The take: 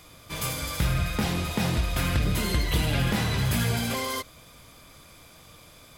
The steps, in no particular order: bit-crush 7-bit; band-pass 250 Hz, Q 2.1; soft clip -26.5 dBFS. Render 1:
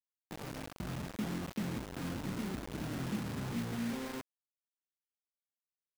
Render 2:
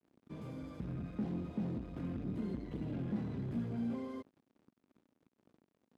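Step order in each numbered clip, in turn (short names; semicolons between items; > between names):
soft clip > band-pass > bit-crush; bit-crush > soft clip > band-pass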